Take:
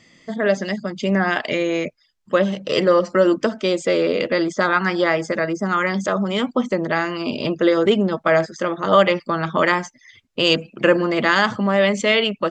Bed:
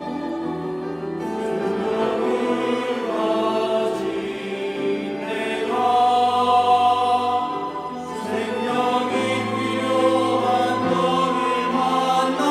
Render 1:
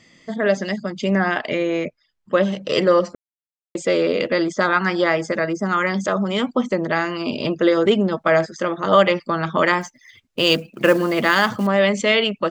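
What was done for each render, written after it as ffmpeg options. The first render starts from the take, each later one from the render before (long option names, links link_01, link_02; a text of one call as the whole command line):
ffmpeg -i in.wav -filter_complex "[0:a]asettb=1/sr,asplit=3[link_01][link_02][link_03];[link_01]atrim=end=1.284[link_04];[link_02]atrim=start=1.28:end=2.38,asetpts=PTS-STARTPTS,afade=type=in:duration=0.004:curve=qsin,afade=type=out:start_time=1.096:duration=0.004:curve=qsin,highshelf=frequency=4200:gain=-9.5[link_05];[link_03]atrim=start=2.376[link_06];[link_04][link_05]acrossfade=duration=0.004:curve1=hsin:curve2=qsin[link_07];[link_07][link_06]acrossfade=duration=0.004:curve1=qsin:curve2=hsin,asettb=1/sr,asplit=3[link_08][link_09][link_10];[link_08]atrim=end=9.814[link_11];[link_09]atrim=start=9.81:end=11.67,asetpts=PTS-STARTPTS,afade=type=in:duration=0.004:curve=qsin,afade=type=out:start_time=1.856:duration=0.004:curve=qsin,acrusher=bits=6:mode=log:mix=0:aa=0.000001[link_12];[link_10]atrim=start=11.666[link_13];[link_11][link_12]acrossfade=duration=0.004:curve1=hsin:curve2=qsin[link_14];[link_14][link_13]acrossfade=duration=0.004:curve1=qsin:curve2=hsin,asplit=3[link_15][link_16][link_17];[link_15]atrim=end=3.15,asetpts=PTS-STARTPTS,afade=type=out:start_time=3.146:duration=0.004:curve=hsin[link_18];[link_16]atrim=start=3.15:end=3.75,asetpts=PTS-STARTPTS,volume=0[link_19];[link_17]atrim=start=3.75,asetpts=PTS-STARTPTS,afade=type=in:duration=0.004:curve=hsin[link_20];[link_18][link_19][link_20]concat=n=3:v=0:a=1" out.wav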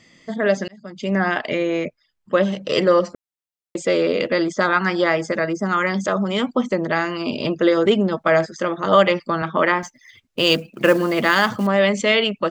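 ffmpeg -i in.wav -filter_complex "[0:a]asettb=1/sr,asplit=3[link_01][link_02][link_03];[link_01]atrim=end=9.424[link_04];[link_02]atrim=start=9.42:end=9.83,asetpts=PTS-STARTPTS,afade=type=in:duration=0.004:curve=qsin,afade=type=out:start_time=0.406:duration=0.004:curve=qsin,highpass=170,lowpass=3000[link_05];[link_03]atrim=start=9.826[link_06];[link_04][link_05]acrossfade=duration=0.004:curve1=hsin:curve2=qsin[link_07];[link_07][link_06]acrossfade=duration=0.004:curve1=qsin:curve2=hsin,asplit=2[link_08][link_09];[link_08]atrim=end=0.68,asetpts=PTS-STARTPTS,afade=type=out:start_time=0.676:duration=0.004:curve=hsin[link_10];[link_09]atrim=start=0.68,asetpts=PTS-STARTPTS,afade=type=in:duration=0.56[link_11];[link_10][link_11]concat=n=2:v=0:a=1" out.wav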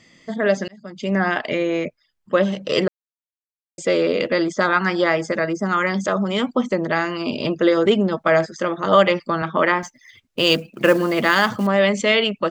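ffmpeg -i in.wav -filter_complex "[0:a]asplit=3[link_01][link_02][link_03];[link_01]atrim=end=2.88,asetpts=PTS-STARTPTS,afade=type=out:start_time=2.876:duration=0.004:curve=hsin[link_04];[link_02]atrim=start=2.88:end=3.78,asetpts=PTS-STARTPTS,volume=0[link_05];[link_03]atrim=start=3.78,asetpts=PTS-STARTPTS,afade=type=in:duration=0.004:curve=hsin[link_06];[link_04][link_05][link_06]concat=n=3:v=0:a=1" out.wav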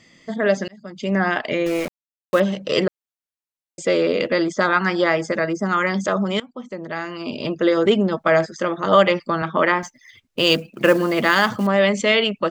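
ffmpeg -i in.wav -filter_complex "[0:a]asettb=1/sr,asplit=3[link_01][link_02][link_03];[link_01]atrim=end=1.664[link_04];[link_02]atrim=start=1.66:end=2.4,asetpts=PTS-STARTPTS,afade=type=in:duration=0.004:curve=qsin,afade=type=out:start_time=0.736:duration=0.004:curve=qsin,aeval=exprs='val(0)*gte(abs(val(0)),0.0447)':channel_layout=same[link_05];[link_03]atrim=start=2.396[link_06];[link_04][link_05]acrossfade=duration=0.004:curve1=hsin:curve2=qsin[link_07];[link_07][link_06]acrossfade=duration=0.004:curve1=qsin:curve2=hsin,asplit=2[link_08][link_09];[link_08]atrim=end=6.4,asetpts=PTS-STARTPTS,afade=type=out:start_time=6.396:duration=0.004:curve=hsin:silence=0.0841395[link_10];[link_09]atrim=start=6.4,asetpts=PTS-STARTPTS,afade=type=in:duration=1.49:silence=0.0841395[link_11];[link_10][link_11]concat=n=2:v=0:a=1" out.wav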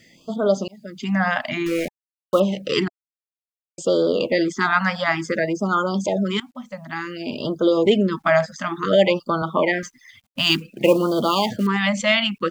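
ffmpeg -i in.wav -af "acrusher=bits=10:mix=0:aa=0.000001,afftfilt=real='re*(1-between(b*sr/1024,360*pow(2200/360,0.5+0.5*sin(2*PI*0.56*pts/sr))/1.41,360*pow(2200/360,0.5+0.5*sin(2*PI*0.56*pts/sr))*1.41))':imag='im*(1-between(b*sr/1024,360*pow(2200/360,0.5+0.5*sin(2*PI*0.56*pts/sr))/1.41,360*pow(2200/360,0.5+0.5*sin(2*PI*0.56*pts/sr))*1.41))':win_size=1024:overlap=0.75" out.wav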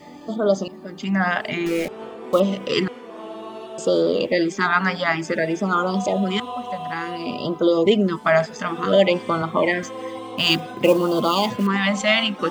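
ffmpeg -i in.wav -i bed.wav -filter_complex "[1:a]volume=-14dB[link_01];[0:a][link_01]amix=inputs=2:normalize=0" out.wav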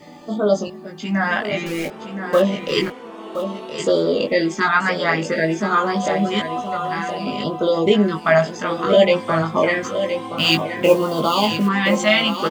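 ffmpeg -i in.wav -filter_complex "[0:a]asplit=2[link_01][link_02];[link_02]adelay=19,volume=-3dB[link_03];[link_01][link_03]amix=inputs=2:normalize=0,aecho=1:1:1020:0.335" out.wav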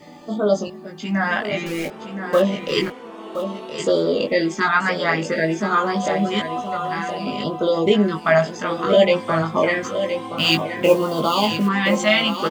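ffmpeg -i in.wav -af "volume=-1dB" out.wav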